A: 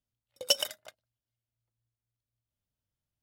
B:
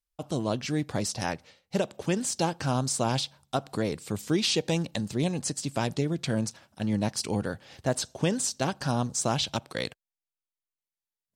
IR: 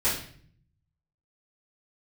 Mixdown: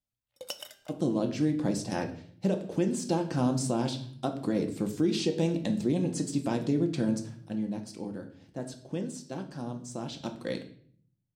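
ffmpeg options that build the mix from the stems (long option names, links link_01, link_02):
-filter_complex "[0:a]bandreject=frequency=396:width_type=h:width=4,bandreject=frequency=792:width_type=h:width=4,bandreject=frequency=1188:width_type=h:width=4,bandreject=frequency=1584:width_type=h:width=4,bandreject=frequency=1980:width_type=h:width=4,bandreject=frequency=2376:width_type=h:width=4,bandreject=frequency=2772:width_type=h:width=4,bandreject=frequency=3168:width_type=h:width=4,bandreject=frequency=3564:width_type=h:width=4,bandreject=frequency=3960:width_type=h:width=4,bandreject=frequency=4356:width_type=h:width=4,bandreject=frequency=4752:width_type=h:width=4,bandreject=frequency=5148:width_type=h:width=4,bandreject=frequency=5544:width_type=h:width=4,bandreject=frequency=5940:width_type=h:width=4,bandreject=frequency=6336:width_type=h:width=4,bandreject=frequency=6732:width_type=h:width=4,bandreject=frequency=7128:width_type=h:width=4,bandreject=frequency=7524:width_type=h:width=4,bandreject=frequency=7920:width_type=h:width=4,bandreject=frequency=8316:width_type=h:width=4,acompressor=threshold=-32dB:ratio=10,volume=-3.5dB,asplit=2[link_01][link_02];[link_02]volume=-21dB[link_03];[1:a]equalizer=frequency=300:width_type=o:width=1.9:gain=12,adelay=700,volume=-1dB,afade=type=out:start_time=7.31:duration=0.35:silence=0.298538,afade=type=in:start_time=10.05:duration=0.29:silence=0.446684,asplit=2[link_04][link_05];[link_05]volume=-15dB[link_06];[2:a]atrim=start_sample=2205[link_07];[link_03][link_06]amix=inputs=2:normalize=0[link_08];[link_08][link_07]afir=irnorm=-1:irlink=0[link_09];[link_01][link_04][link_09]amix=inputs=3:normalize=0,alimiter=limit=-17dB:level=0:latency=1:release=325"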